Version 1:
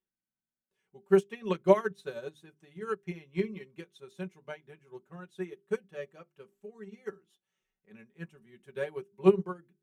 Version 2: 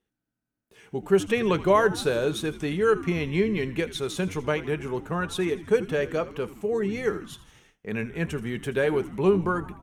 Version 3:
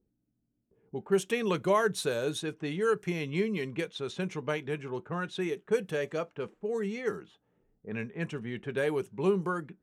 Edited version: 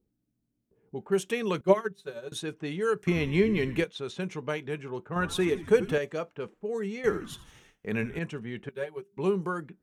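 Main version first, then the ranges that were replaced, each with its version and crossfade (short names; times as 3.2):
3
1.61–2.32 from 1
3.07–3.84 from 2
5.16–5.98 from 2
7.04–8.19 from 2
8.69–9.17 from 1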